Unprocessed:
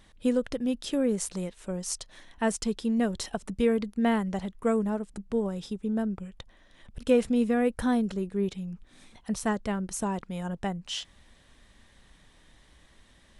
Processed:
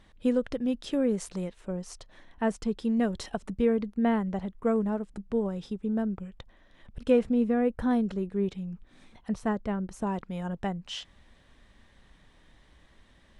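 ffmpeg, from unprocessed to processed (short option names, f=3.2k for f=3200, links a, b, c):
-af "asetnsamples=n=441:p=0,asendcmd='1.61 lowpass f 1500;2.79 lowpass f 3300;3.53 lowpass f 1500;4.76 lowpass f 2600;7.19 lowpass f 1200;7.91 lowpass f 2500;9.34 lowpass f 1300;10.07 lowpass f 3100',lowpass=f=3.1k:p=1"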